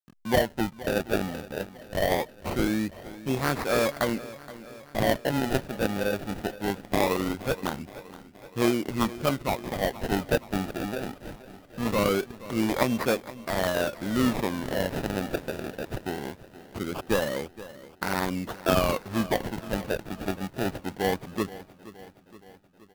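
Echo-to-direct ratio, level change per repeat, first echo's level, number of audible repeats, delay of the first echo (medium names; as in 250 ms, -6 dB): -15.0 dB, -4.5 dB, -17.0 dB, 4, 472 ms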